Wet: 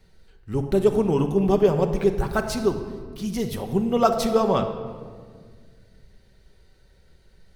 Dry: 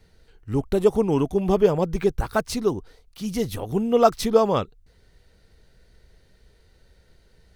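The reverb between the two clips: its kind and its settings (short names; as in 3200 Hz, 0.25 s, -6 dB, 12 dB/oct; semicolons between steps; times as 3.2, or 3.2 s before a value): shoebox room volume 2400 m³, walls mixed, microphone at 1.1 m; gain -1.5 dB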